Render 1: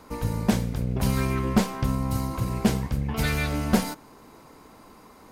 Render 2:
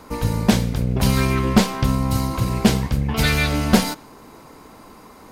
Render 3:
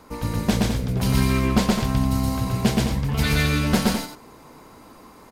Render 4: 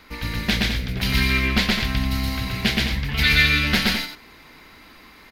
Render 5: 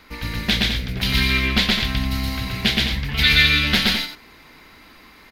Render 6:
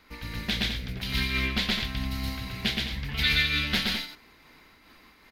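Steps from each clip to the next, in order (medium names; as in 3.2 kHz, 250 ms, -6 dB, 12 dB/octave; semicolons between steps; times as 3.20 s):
dynamic bell 3.8 kHz, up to +5 dB, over -48 dBFS, Q 0.92; trim +6 dB
loudspeakers at several distances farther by 42 m -1 dB, 72 m -8 dB; trim -5.5 dB
graphic EQ 125/250/500/1000/2000/4000/8000 Hz -8/-4/-8/-8/+9/+7/-11 dB; trim +3 dB
dynamic bell 3.5 kHz, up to +6 dB, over -35 dBFS, Q 2.4
random flutter of the level, depth 50%; trim -6 dB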